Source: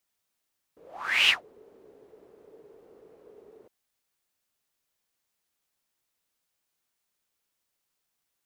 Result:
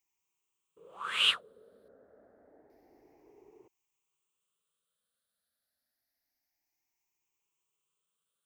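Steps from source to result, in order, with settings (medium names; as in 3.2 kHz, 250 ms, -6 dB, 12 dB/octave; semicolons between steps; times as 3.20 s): drifting ripple filter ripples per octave 0.71, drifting +0.28 Hz, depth 15 dB; 1.88–2.70 s: resonant low-pass 1.3 kHz, resonance Q 1.8; trim -7.5 dB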